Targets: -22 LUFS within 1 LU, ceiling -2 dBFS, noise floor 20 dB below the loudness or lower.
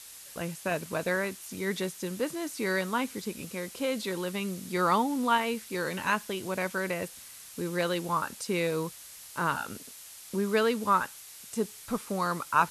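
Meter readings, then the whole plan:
noise floor -48 dBFS; noise floor target -51 dBFS; loudness -31.0 LUFS; peak level -9.5 dBFS; loudness target -22.0 LUFS
-> noise print and reduce 6 dB; trim +9 dB; peak limiter -2 dBFS

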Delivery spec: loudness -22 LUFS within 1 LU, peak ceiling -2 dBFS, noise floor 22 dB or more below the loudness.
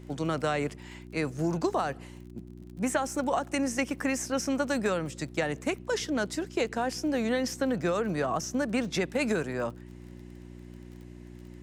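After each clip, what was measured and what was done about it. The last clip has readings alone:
tick rate 32 per s; hum 60 Hz; highest harmonic 360 Hz; hum level -43 dBFS; loudness -30.0 LUFS; peak level -14.5 dBFS; loudness target -22.0 LUFS
-> de-click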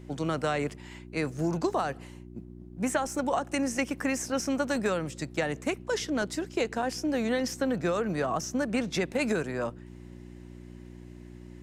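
tick rate 0.086 per s; hum 60 Hz; highest harmonic 360 Hz; hum level -43 dBFS
-> de-hum 60 Hz, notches 6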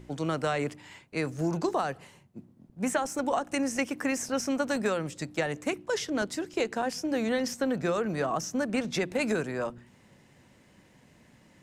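hum not found; loudness -30.5 LUFS; peak level -14.5 dBFS; loudness target -22.0 LUFS
-> trim +8.5 dB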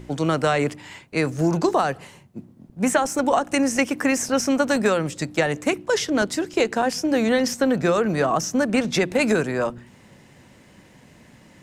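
loudness -22.0 LUFS; peak level -6.0 dBFS; noise floor -51 dBFS

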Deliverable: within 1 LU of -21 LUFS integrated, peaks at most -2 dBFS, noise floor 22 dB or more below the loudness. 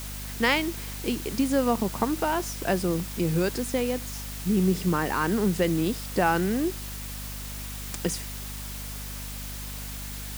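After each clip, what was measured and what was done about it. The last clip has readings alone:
hum 50 Hz; highest harmonic 250 Hz; hum level -36 dBFS; noise floor -36 dBFS; noise floor target -50 dBFS; loudness -28.0 LUFS; peak level -9.0 dBFS; loudness target -21.0 LUFS
-> de-hum 50 Hz, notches 5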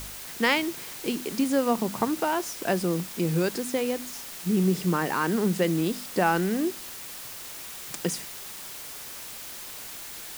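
hum not found; noise floor -40 dBFS; noise floor target -50 dBFS
-> noise reduction 10 dB, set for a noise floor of -40 dBFS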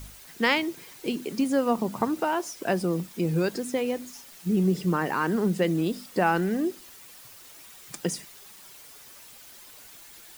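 noise floor -49 dBFS; loudness -27.0 LUFS; peak level -9.5 dBFS; loudness target -21.0 LUFS
-> trim +6 dB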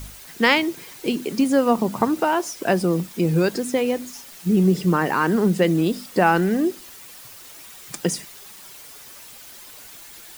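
loudness -21.0 LUFS; peak level -3.5 dBFS; noise floor -43 dBFS

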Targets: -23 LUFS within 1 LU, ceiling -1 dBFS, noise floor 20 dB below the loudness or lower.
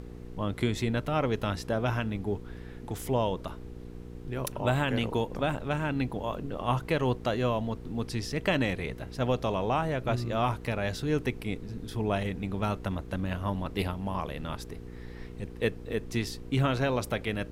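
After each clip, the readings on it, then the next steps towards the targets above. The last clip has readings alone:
hum 60 Hz; highest harmonic 480 Hz; hum level -41 dBFS; noise floor -43 dBFS; noise floor target -51 dBFS; loudness -31.0 LUFS; peak level -13.0 dBFS; loudness target -23.0 LUFS
-> de-hum 60 Hz, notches 8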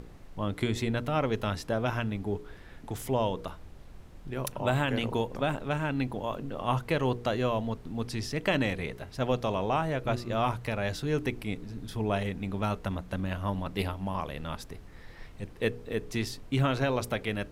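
hum not found; noise floor -49 dBFS; noise floor target -52 dBFS
-> noise print and reduce 6 dB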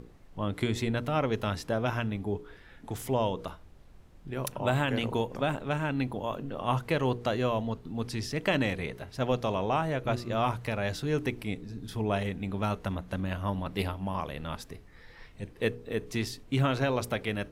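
noise floor -53 dBFS; loudness -31.5 LUFS; peak level -13.5 dBFS; loudness target -23.0 LUFS
-> trim +8.5 dB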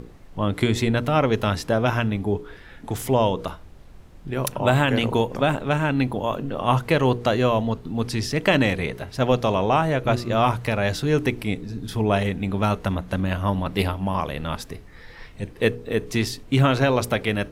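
loudness -23.0 LUFS; peak level -5.0 dBFS; noise floor -45 dBFS

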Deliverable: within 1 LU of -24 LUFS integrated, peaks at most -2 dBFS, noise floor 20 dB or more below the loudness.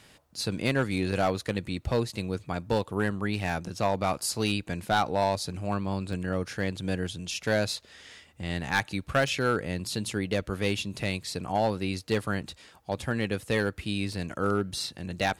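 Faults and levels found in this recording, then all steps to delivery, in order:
clipped samples 0.4%; clipping level -17.0 dBFS; dropouts 4; longest dropout 1.9 ms; loudness -29.5 LUFS; peak level -17.0 dBFS; loudness target -24.0 LUFS
-> clip repair -17 dBFS; interpolate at 6.13/9.28/12.21/14.13 s, 1.9 ms; trim +5.5 dB

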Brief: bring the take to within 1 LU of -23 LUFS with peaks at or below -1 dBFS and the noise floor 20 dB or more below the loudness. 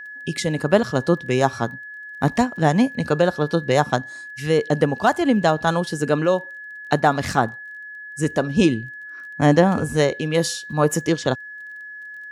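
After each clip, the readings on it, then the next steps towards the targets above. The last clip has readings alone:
tick rate 20 per s; steady tone 1.7 kHz; tone level -34 dBFS; loudness -20.5 LUFS; peak level -2.5 dBFS; loudness target -23.0 LUFS
-> de-click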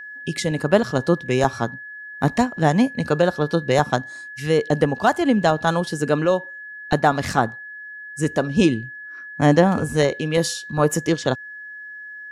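tick rate 0 per s; steady tone 1.7 kHz; tone level -34 dBFS
-> band-stop 1.7 kHz, Q 30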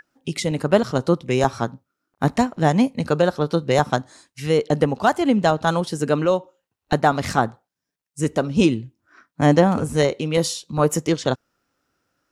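steady tone not found; loudness -21.0 LUFS; peak level -2.5 dBFS; loudness target -23.0 LUFS
-> trim -2 dB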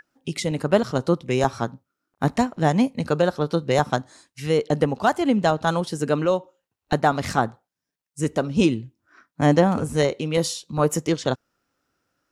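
loudness -23.0 LUFS; peak level -4.5 dBFS; noise floor -85 dBFS

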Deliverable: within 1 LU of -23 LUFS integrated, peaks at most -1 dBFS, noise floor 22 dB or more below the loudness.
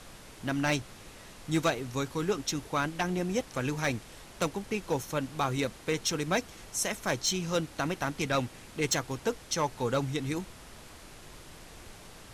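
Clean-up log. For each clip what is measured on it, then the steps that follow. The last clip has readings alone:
clipped samples 0.3%; clipping level -20.0 dBFS; noise floor -50 dBFS; noise floor target -54 dBFS; loudness -31.5 LUFS; peak level -20.0 dBFS; loudness target -23.0 LUFS
-> clip repair -20 dBFS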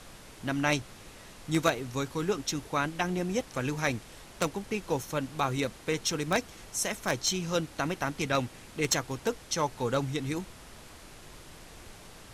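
clipped samples 0.0%; noise floor -50 dBFS; noise floor target -53 dBFS
-> noise print and reduce 6 dB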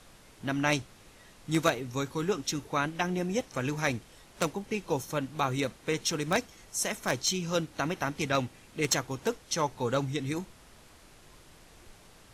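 noise floor -56 dBFS; loudness -31.0 LUFS; peak level -11.0 dBFS; loudness target -23.0 LUFS
-> trim +8 dB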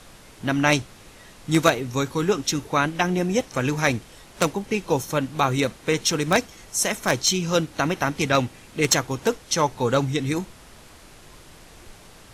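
loudness -23.0 LUFS; peak level -3.0 dBFS; noise floor -48 dBFS

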